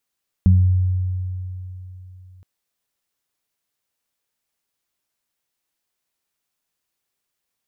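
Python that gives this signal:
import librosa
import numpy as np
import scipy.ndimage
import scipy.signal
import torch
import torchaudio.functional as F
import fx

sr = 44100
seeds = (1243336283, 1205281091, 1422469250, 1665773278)

y = fx.additive(sr, length_s=1.97, hz=92.0, level_db=-9.0, upper_db=(-4.0,), decay_s=3.38, upper_decays_s=(0.45,))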